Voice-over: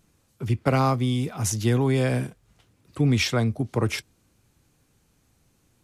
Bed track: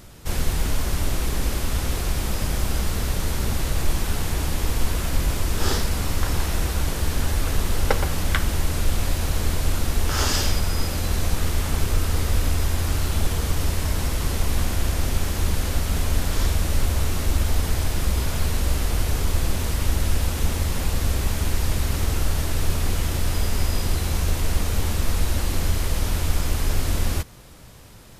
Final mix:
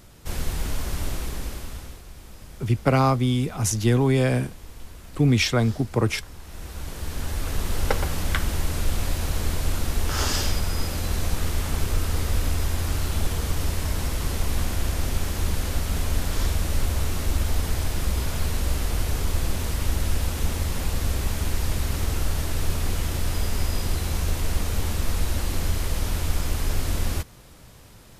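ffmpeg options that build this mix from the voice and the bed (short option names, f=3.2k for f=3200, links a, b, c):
-filter_complex "[0:a]adelay=2200,volume=2dB[a];[1:a]volume=12dB,afade=t=out:st=1.07:d=0.95:silence=0.188365,afade=t=in:st=6.42:d=1.43:silence=0.149624[b];[a][b]amix=inputs=2:normalize=0"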